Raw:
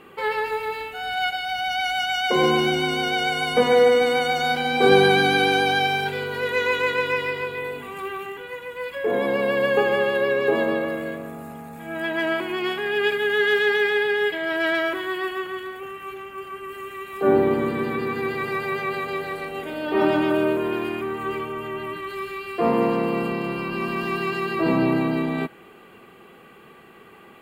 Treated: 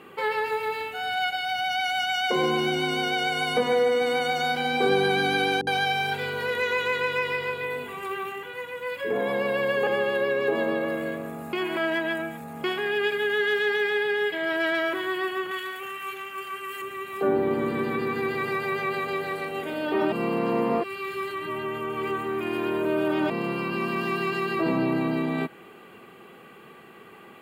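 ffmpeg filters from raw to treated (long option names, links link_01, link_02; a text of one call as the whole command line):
ffmpeg -i in.wav -filter_complex "[0:a]asettb=1/sr,asplit=3[link_01][link_02][link_03];[link_01]atrim=end=5.614[link_04];[link_02]atrim=start=5.61:end=9.87,asetpts=PTS-STARTPTS,afade=type=in:duration=0.004:curve=qsin,afade=type=out:start_time=4.256:duration=0.004:curve=qsin,acrossover=split=340[link_05][link_06];[link_06]adelay=60[link_07];[link_05][link_07]amix=inputs=2:normalize=0,atrim=end_sample=187866[link_08];[link_03]atrim=start=9.866[link_09];[link_04][link_08]acrossfade=duration=0.004:curve1=hsin:curve2=qsin[link_10];[link_10][link_09]acrossfade=duration=0.004:curve1=qsin:curve2=hsin,asettb=1/sr,asplit=3[link_11][link_12][link_13];[link_11]atrim=end=15.514[link_14];[link_12]atrim=start=15.51:end=16.82,asetpts=PTS-STARTPTS,afade=type=in:duration=0.004:curve=qsin,afade=type=out:start_time=1.306:duration=0.004:curve=qsin,tiltshelf=frequency=970:gain=-7[link_15];[link_13]atrim=start=16.816[link_16];[link_14][link_15]acrossfade=duration=0.004:curve1=hsin:curve2=qsin[link_17];[link_17][link_16]acrossfade=duration=0.004:curve1=qsin:curve2=hsin,asplit=5[link_18][link_19][link_20][link_21][link_22];[link_18]atrim=end=11.532[link_23];[link_19]atrim=start=11.528:end=12.642,asetpts=PTS-STARTPTS,areverse[link_24];[link_20]atrim=start=12.638:end=20.122[link_25];[link_21]atrim=start=20.118:end=23.302,asetpts=PTS-STARTPTS,areverse[link_26];[link_22]atrim=start=23.298[link_27];[link_23][link_24]acrossfade=duration=0.004:curve1=hsin:curve2=hsin[link_28];[link_28][link_25]acrossfade=duration=0.004:curve1=hsin:curve2=hsin[link_29];[link_29][link_26]acrossfade=duration=0.004:curve1=hsin:curve2=hsin[link_30];[link_30][link_27]acrossfade=duration=0.004:curve1=hsin:curve2=hsin,highpass=87,acompressor=threshold=-24dB:ratio=2" out.wav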